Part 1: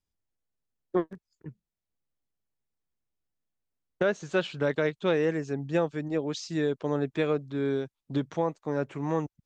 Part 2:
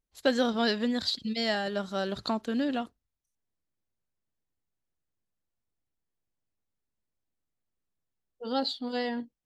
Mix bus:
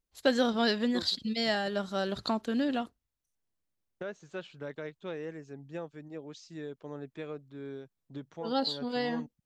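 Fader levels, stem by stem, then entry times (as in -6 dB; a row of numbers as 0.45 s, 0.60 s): -13.5 dB, -0.5 dB; 0.00 s, 0.00 s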